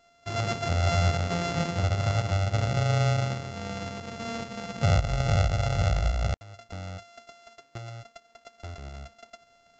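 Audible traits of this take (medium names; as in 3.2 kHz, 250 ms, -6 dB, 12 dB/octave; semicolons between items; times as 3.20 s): a buzz of ramps at a fixed pitch in blocks of 64 samples; tremolo saw up 1.8 Hz, depth 35%; µ-law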